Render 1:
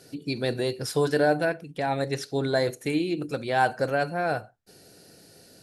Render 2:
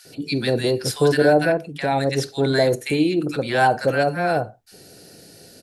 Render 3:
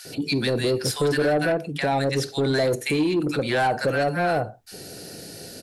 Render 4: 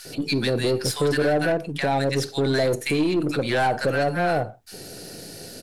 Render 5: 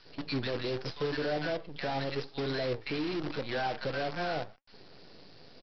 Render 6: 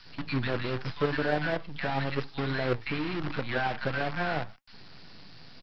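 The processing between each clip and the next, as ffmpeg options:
-filter_complex "[0:a]acrossover=split=1100[s0][s1];[s0]adelay=50[s2];[s2][s1]amix=inputs=2:normalize=0,volume=2.24"
-filter_complex "[0:a]asplit=2[s0][s1];[s1]alimiter=limit=0.2:level=0:latency=1:release=115,volume=1.12[s2];[s0][s2]amix=inputs=2:normalize=0,asoftclip=type=tanh:threshold=0.355,acompressor=threshold=0.0316:ratio=1.5"
-af "aeval=exprs='if(lt(val(0),0),0.708*val(0),val(0))':c=same,volume=1.19"
-af "aresample=11025,acrusher=bits=5:dc=4:mix=0:aa=0.000001,aresample=44100,flanger=delay=3:depth=7.3:regen=78:speed=0.86:shape=triangular,volume=0.422"
-filter_complex "[0:a]acrossover=split=3100[s0][s1];[s1]acompressor=threshold=0.00112:ratio=4:attack=1:release=60[s2];[s0][s2]amix=inputs=2:normalize=0,acrossover=split=290|740[s3][s4][s5];[s4]acrusher=bits=4:mix=0:aa=0.5[s6];[s3][s6][s5]amix=inputs=3:normalize=0,volume=2.11"

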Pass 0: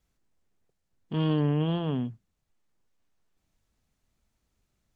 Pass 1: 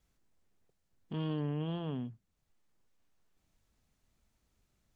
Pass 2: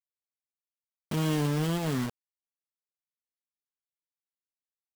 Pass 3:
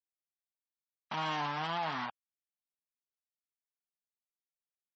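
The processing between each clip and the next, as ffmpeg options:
-af "acompressor=threshold=0.00316:ratio=1.5"
-af "acrusher=bits=6:mix=0:aa=0.000001,volume=2.37"
-af "highpass=190,lowpass=4200,afftfilt=real='re*gte(hypot(re,im),0.00355)':imag='im*gte(hypot(re,im),0.00355)':win_size=1024:overlap=0.75,lowshelf=f=600:t=q:w=3:g=-11"

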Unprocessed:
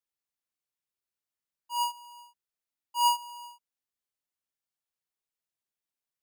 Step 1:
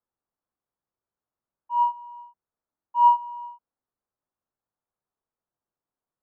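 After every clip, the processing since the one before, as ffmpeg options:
-af "lowpass=f=1300:w=0.5412,lowpass=f=1300:w=1.3066,volume=2.82"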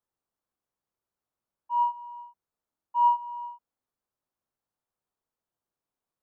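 -af "acompressor=threshold=0.0447:ratio=1.5"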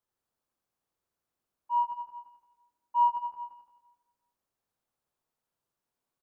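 -af "aecho=1:1:85|170|255|340|425|510|595|680|765:0.708|0.418|0.246|0.145|0.0858|0.0506|0.0299|0.0176|0.0104"

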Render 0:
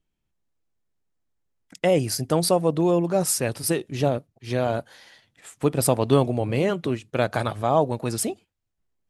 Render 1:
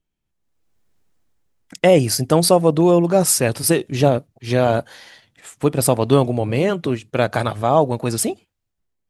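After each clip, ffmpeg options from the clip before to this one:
-af "dynaudnorm=f=190:g=7:m=6.31,volume=0.891"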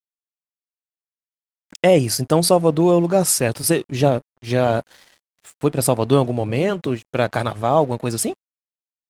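-af "aeval=exprs='sgn(val(0))*max(abs(val(0))-0.00708,0)':c=same,volume=0.891"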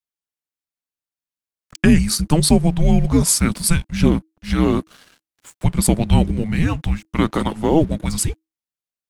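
-af "afreqshift=-320,volume=1.19"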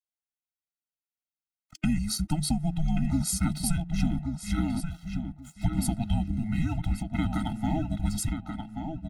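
-filter_complex "[0:a]acompressor=threshold=0.178:ratio=6,asplit=2[s0][s1];[s1]adelay=1132,lowpass=f=3400:p=1,volume=0.531,asplit=2[s2][s3];[s3]adelay=1132,lowpass=f=3400:p=1,volume=0.19,asplit=2[s4][s5];[s5]adelay=1132,lowpass=f=3400:p=1,volume=0.19[s6];[s0][s2][s4][s6]amix=inputs=4:normalize=0,afftfilt=real='re*eq(mod(floor(b*sr/1024/310),2),0)':imag='im*eq(mod(floor(b*sr/1024/310),2),0)':win_size=1024:overlap=0.75,volume=0.473"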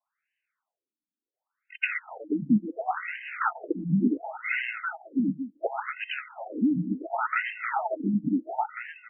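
-filter_complex "[0:a]aeval=exprs='0.126*(abs(mod(val(0)/0.126+3,4)-2)-1)':c=same,asplit=2[s0][s1];[s1]highpass=f=720:p=1,volume=12.6,asoftclip=type=tanh:threshold=0.133[s2];[s0][s2]amix=inputs=2:normalize=0,lowpass=f=5200:p=1,volume=0.501,afftfilt=real='re*between(b*sr/1024,230*pow(2200/230,0.5+0.5*sin(2*PI*0.7*pts/sr))/1.41,230*pow(2200/230,0.5+0.5*sin(2*PI*0.7*pts/sr))*1.41)':imag='im*between(b*sr/1024,230*pow(2200/230,0.5+0.5*sin(2*PI*0.7*pts/sr))/1.41,230*pow(2200/230,0.5+0.5*sin(2*PI*0.7*pts/sr))*1.41)':win_size=1024:overlap=0.75,volume=2.24"

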